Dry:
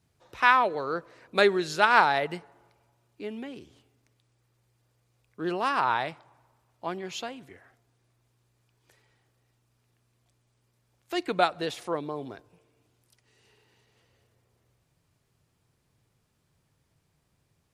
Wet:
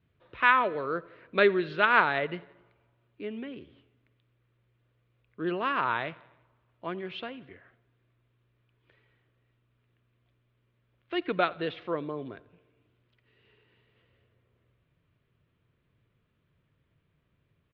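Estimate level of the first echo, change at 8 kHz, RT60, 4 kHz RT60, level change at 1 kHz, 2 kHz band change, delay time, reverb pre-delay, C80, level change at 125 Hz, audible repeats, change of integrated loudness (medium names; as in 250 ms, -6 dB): -23.0 dB, under -30 dB, no reverb, no reverb, -3.5 dB, -0.5 dB, 86 ms, no reverb, no reverb, 0.0 dB, 3, -2.0 dB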